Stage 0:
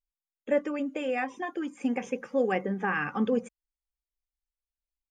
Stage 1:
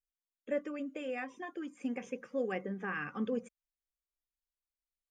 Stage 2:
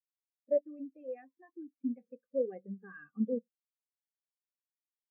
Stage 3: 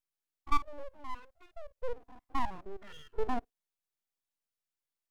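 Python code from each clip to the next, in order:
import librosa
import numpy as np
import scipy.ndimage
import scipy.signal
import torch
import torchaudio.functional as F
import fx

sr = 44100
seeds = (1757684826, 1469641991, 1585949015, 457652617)

y1 = fx.peak_eq(x, sr, hz=840.0, db=-10.5, octaves=0.22)
y1 = y1 * librosa.db_to_amplitude(-8.0)
y2 = fx.spectral_expand(y1, sr, expansion=2.5)
y2 = y2 * librosa.db_to_amplitude(3.5)
y3 = fx.spec_steps(y2, sr, hold_ms=50)
y3 = np.abs(y3)
y3 = y3 * librosa.db_to_amplitude(5.0)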